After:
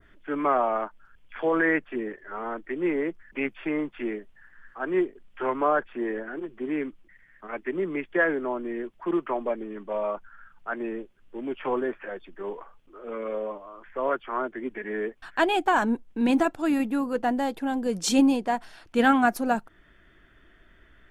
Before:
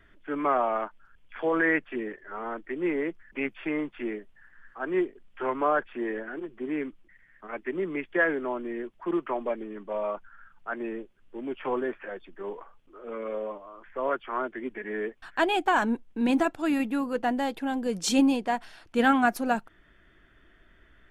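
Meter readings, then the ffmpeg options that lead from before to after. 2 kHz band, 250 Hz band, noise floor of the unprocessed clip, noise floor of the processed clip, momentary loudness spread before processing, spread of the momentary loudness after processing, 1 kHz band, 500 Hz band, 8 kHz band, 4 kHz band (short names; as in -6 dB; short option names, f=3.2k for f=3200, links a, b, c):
+0.5 dB, +2.0 dB, -60 dBFS, -58 dBFS, 15 LU, 14 LU, +1.5 dB, +2.0 dB, +1.5 dB, +0.5 dB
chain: -af "adynamicequalizer=threshold=0.00562:dfrequency=2700:dqfactor=0.89:tfrequency=2700:tqfactor=0.89:attack=5:release=100:ratio=0.375:range=3:mode=cutabove:tftype=bell,volume=2dB"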